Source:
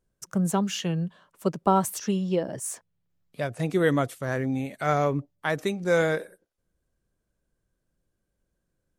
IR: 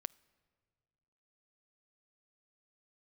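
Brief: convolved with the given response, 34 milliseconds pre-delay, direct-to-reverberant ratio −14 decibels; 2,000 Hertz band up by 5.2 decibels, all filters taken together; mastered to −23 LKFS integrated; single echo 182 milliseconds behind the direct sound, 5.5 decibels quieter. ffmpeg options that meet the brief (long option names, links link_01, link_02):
-filter_complex "[0:a]equalizer=frequency=2000:width_type=o:gain=7,aecho=1:1:182:0.531,asplit=2[link_01][link_02];[1:a]atrim=start_sample=2205,adelay=34[link_03];[link_02][link_03]afir=irnorm=-1:irlink=0,volume=17.5dB[link_04];[link_01][link_04]amix=inputs=2:normalize=0,volume=-12.5dB"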